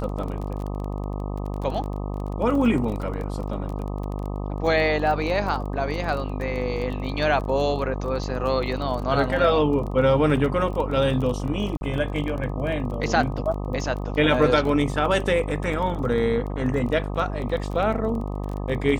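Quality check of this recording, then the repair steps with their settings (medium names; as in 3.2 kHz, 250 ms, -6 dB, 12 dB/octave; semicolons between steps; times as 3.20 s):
buzz 50 Hz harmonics 25 -29 dBFS
crackle 22 per s -30 dBFS
11.77–11.81 s: dropout 41 ms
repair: de-click; de-hum 50 Hz, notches 25; interpolate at 11.77 s, 41 ms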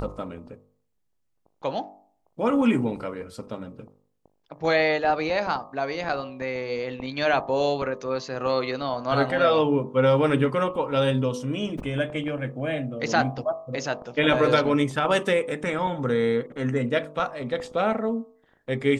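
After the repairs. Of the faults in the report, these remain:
nothing left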